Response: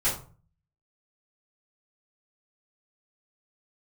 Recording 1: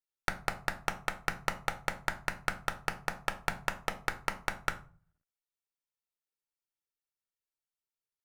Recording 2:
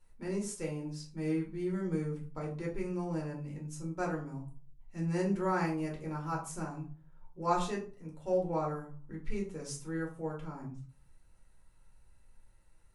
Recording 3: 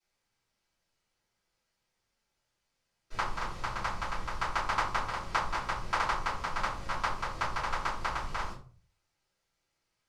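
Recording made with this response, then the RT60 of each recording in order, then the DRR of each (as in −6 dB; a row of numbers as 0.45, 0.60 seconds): 3; 0.40, 0.40, 0.40 seconds; 7.5, −2.5, −12.0 decibels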